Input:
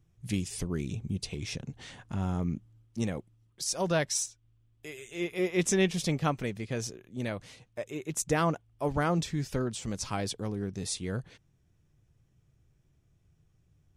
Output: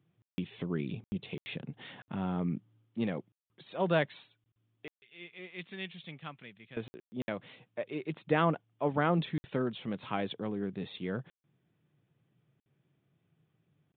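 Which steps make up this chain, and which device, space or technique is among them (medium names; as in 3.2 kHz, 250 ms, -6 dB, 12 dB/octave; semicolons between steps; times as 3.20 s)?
call with lost packets (high-pass 140 Hz 24 dB/octave; resampled via 8 kHz; lost packets of 20 ms bursts); 4.92–6.77 s: amplifier tone stack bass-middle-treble 5-5-5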